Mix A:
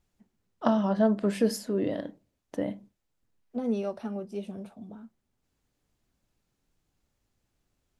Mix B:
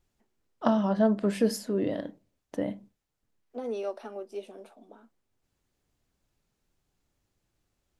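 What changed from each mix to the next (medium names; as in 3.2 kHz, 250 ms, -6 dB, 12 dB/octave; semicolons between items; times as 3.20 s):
second voice: add inverse Chebyshev high-pass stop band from 150 Hz, stop band 40 dB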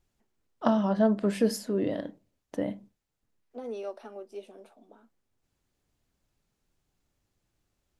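second voice -3.5 dB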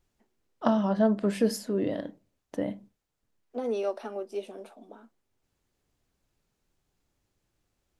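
second voice +7.0 dB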